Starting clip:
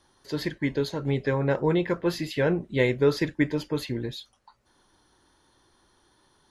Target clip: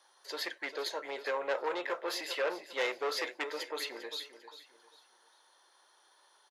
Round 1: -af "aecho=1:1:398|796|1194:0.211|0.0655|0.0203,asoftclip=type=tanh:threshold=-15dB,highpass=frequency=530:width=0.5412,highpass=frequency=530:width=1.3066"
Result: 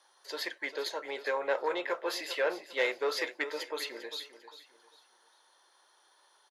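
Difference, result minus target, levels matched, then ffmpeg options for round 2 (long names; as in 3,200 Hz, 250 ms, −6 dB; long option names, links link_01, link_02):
soft clipping: distortion −8 dB
-af "aecho=1:1:398|796|1194:0.211|0.0655|0.0203,asoftclip=type=tanh:threshold=-22dB,highpass=frequency=530:width=0.5412,highpass=frequency=530:width=1.3066"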